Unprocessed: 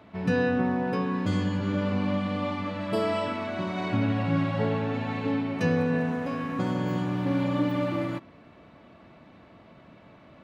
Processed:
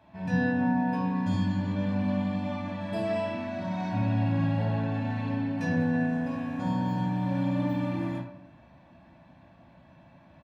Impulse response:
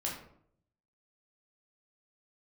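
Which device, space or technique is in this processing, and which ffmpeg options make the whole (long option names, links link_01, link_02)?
microphone above a desk: -filter_complex "[0:a]aecho=1:1:1.2:0.61[link_01];[1:a]atrim=start_sample=2205[link_02];[link_01][link_02]afir=irnorm=-1:irlink=0,volume=-8dB"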